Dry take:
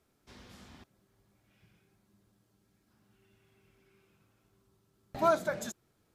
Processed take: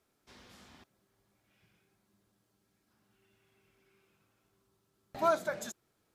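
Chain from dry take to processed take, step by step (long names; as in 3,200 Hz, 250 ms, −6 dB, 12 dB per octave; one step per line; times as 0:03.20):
low-shelf EQ 250 Hz −7.5 dB
level −1 dB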